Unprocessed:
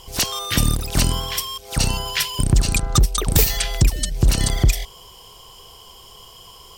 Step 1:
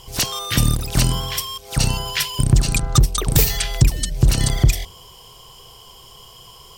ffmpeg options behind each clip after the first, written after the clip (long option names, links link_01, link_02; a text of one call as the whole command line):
ffmpeg -i in.wav -af "equalizer=frequency=130:width=3:gain=6.5,bandreject=frequency=85.85:width_type=h:width=4,bandreject=frequency=171.7:width_type=h:width=4,bandreject=frequency=257.55:width_type=h:width=4,bandreject=frequency=343.4:width_type=h:width=4,bandreject=frequency=429.25:width_type=h:width=4,bandreject=frequency=515.1:width_type=h:width=4,bandreject=frequency=600.95:width_type=h:width=4,bandreject=frequency=686.8:width_type=h:width=4,bandreject=frequency=772.65:width_type=h:width=4,bandreject=frequency=858.5:width_type=h:width=4,bandreject=frequency=944.35:width_type=h:width=4,bandreject=frequency=1030.2:width_type=h:width=4,bandreject=frequency=1116.05:width_type=h:width=4" out.wav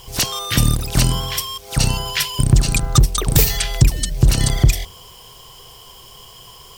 ffmpeg -i in.wav -af "acrusher=bits=7:mix=0:aa=0.000001,volume=1.5dB" out.wav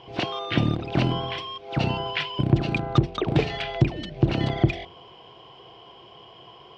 ffmpeg -i in.wav -af "highpass=140,equalizer=frequency=330:width_type=q:width=4:gain=9,equalizer=frequency=700:width_type=q:width=4:gain=7,equalizer=frequency=1200:width_type=q:width=4:gain=-3,equalizer=frequency=1800:width_type=q:width=4:gain=-4,lowpass=frequency=3000:width=0.5412,lowpass=frequency=3000:width=1.3066,volume=-2.5dB" out.wav